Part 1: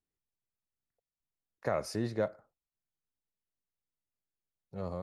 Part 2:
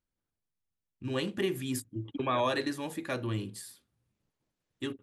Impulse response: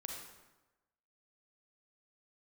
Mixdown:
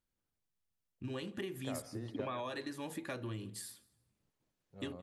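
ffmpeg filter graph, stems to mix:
-filter_complex "[0:a]volume=-14.5dB,asplit=3[a][b][c];[b]volume=-8.5dB[d];[c]volume=-16dB[e];[1:a]acompressor=threshold=-38dB:ratio=6,volume=-0.5dB,asplit=2[f][g];[g]volume=-23.5dB[h];[2:a]atrim=start_sample=2205[i];[d][i]afir=irnorm=-1:irlink=0[j];[e][h]amix=inputs=2:normalize=0,aecho=0:1:170|340|510|680:1|0.24|0.0576|0.0138[k];[a][f][j][k]amix=inputs=4:normalize=0"

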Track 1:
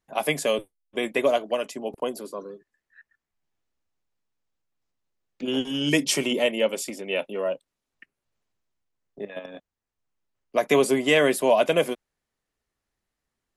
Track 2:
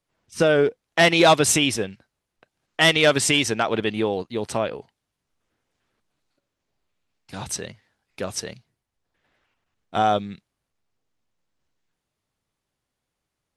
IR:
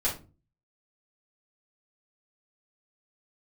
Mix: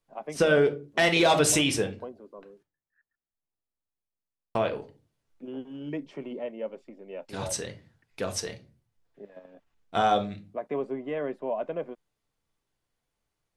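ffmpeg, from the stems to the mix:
-filter_complex "[0:a]lowpass=1.2k,volume=-11dB[a];[1:a]volume=-5dB,asplit=3[b][c][d];[b]atrim=end=2.63,asetpts=PTS-STARTPTS,afade=t=out:st=2.626:d=0.004:c=hsin[e];[c]atrim=start=2.63:end=4.55,asetpts=PTS-STARTPTS,volume=0[f];[d]atrim=start=4.55,asetpts=PTS-STARTPTS,afade=t=in:d=0.004:c=hsin[g];[e][f][g]concat=n=3:v=0:a=1,asplit=2[h][i];[i]volume=-11dB[j];[2:a]atrim=start_sample=2205[k];[j][k]afir=irnorm=-1:irlink=0[l];[a][h][l]amix=inputs=3:normalize=0,alimiter=limit=-12dB:level=0:latency=1:release=66"

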